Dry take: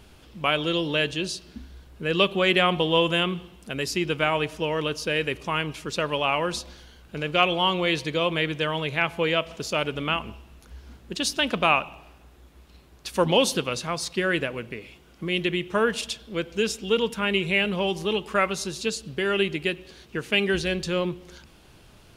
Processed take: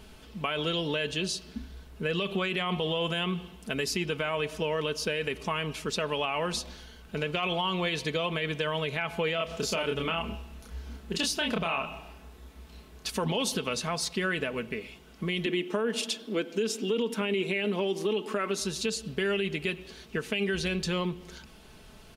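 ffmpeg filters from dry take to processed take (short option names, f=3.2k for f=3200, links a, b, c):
-filter_complex "[0:a]asettb=1/sr,asplit=3[a][b][c];[a]atrim=end=9.354[d];[b]atrim=start=9.35:end=13.1,asetpts=PTS-STARTPTS,afade=t=in:d=0.004:c=qsin,afade=t=out:st=3.746:d=0.004:c=qsin,asplit=2[e][f];[f]adelay=30,volume=-2.5dB[g];[e][g]amix=inputs=2:normalize=0,atrim=end_sample=165375[h];[c]atrim=start=13.096[i];[d][h]acrossfade=d=0.004:c1=hsin:c2=qsin[j];[j][i]acrossfade=d=0.004:c1=qsin:c2=hsin,asettb=1/sr,asplit=3[k][l][m];[k]atrim=end=15.464[n];[l]atrim=start=15.46:end=18.6,asetpts=PTS-STARTPTS,afade=t=in:d=0.004:c=qsin,afade=t=out:st=3.136:d=0.004:c=qsin,highpass=f=280:t=q:w=3.2[o];[m]atrim=start=18.596[p];[n][o]acrossfade=d=0.004:c1=hsin:c2=qsin[q];[q][p]acrossfade=d=0.004:c1=qsin:c2=hsin,aecho=1:1:4.6:0.46,alimiter=limit=-15.5dB:level=0:latency=1:release=41,acompressor=threshold=-27dB:ratio=2.5"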